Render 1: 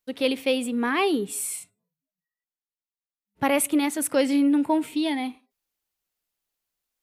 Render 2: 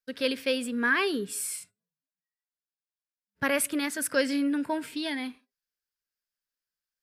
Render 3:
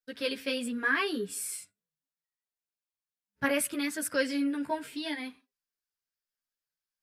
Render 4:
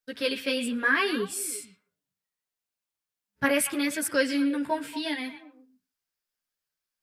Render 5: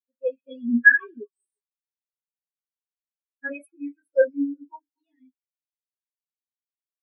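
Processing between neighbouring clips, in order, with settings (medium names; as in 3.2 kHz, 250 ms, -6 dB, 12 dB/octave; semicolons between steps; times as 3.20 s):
gate -48 dBFS, range -7 dB; graphic EQ with 31 bands 315 Hz -6 dB, 800 Hz -10 dB, 1.6 kHz +12 dB, 5 kHz +9 dB; trim -3.5 dB
chorus voices 2, 0.74 Hz, delay 12 ms, depth 2.5 ms
repeats whose band climbs or falls 117 ms, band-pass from 2.8 kHz, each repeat -1.4 oct, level -9 dB; trim +4 dB
gated-style reverb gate 80 ms falling, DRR -7.5 dB; spectral contrast expander 4:1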